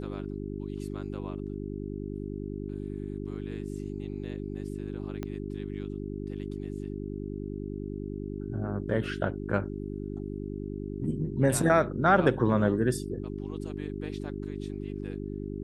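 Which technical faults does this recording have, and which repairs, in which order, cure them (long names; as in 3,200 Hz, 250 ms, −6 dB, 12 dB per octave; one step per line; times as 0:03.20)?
mains hum 50 Hz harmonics 8 −36 dBFS
0:05.23: click −21 dBFS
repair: click removal
hum removal 50 Hz, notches 8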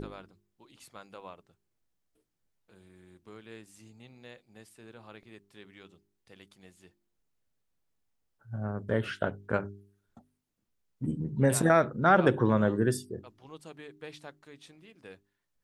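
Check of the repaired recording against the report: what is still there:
0:05.23: click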